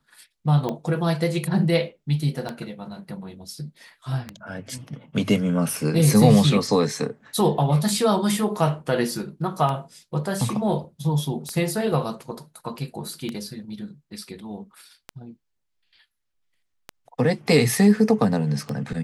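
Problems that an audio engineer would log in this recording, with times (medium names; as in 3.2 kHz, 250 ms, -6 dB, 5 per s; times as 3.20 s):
tick 33 1/3 rpm -15 dBFS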